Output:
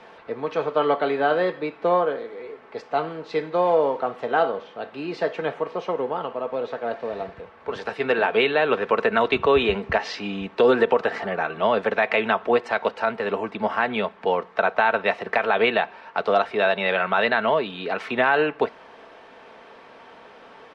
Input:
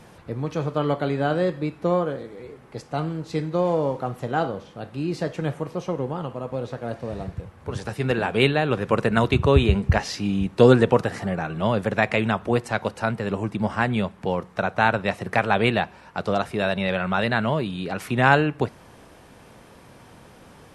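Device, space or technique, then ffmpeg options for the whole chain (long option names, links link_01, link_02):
DJ mixer with the lows and highs turned down: -filter_complex "[0:a]lowpass=5500,acrossover=split=340 4200:gain=0.0891 1 0.178[link_01][link_02][link_03];[link_01][link_02][link_03]amix=inputs=3:normalize=0,aecho=1:1:4.5:0.36,alimiter=limit=-13.5dB:level=0:latency=1:release=84,volume=5dB"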